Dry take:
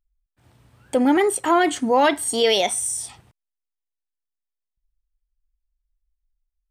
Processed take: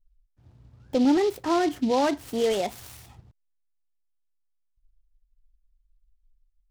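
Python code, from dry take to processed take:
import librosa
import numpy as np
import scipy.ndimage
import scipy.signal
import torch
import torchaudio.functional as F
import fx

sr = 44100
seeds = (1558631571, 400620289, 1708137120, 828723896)

y = fx.tilt_eq(x, sr, slope=-3.5)
y = fx.noise_mod_delay(y, sr, seeds[0], noise_hz=3600.0, depth_ms=0.036)
y = F.gain(torch.from_numpy(y), -8.5).numpy()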